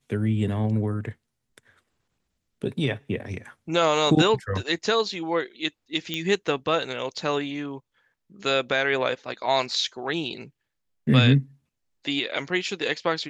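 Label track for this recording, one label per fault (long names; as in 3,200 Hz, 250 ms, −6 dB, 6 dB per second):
6.140000	6.140000	click −14 dBFS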